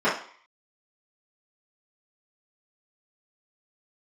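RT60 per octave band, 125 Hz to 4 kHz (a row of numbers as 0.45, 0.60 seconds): 0.35, 0.40, 0.45, 0.55, 0.50, 0.55 seconds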